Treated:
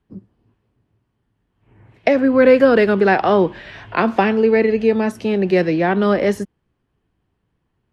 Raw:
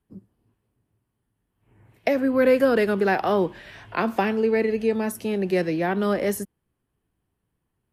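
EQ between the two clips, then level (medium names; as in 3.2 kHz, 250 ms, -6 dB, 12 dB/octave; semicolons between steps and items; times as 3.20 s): low-pass 4.8 kHz 12 dB/octave; +7.0 dB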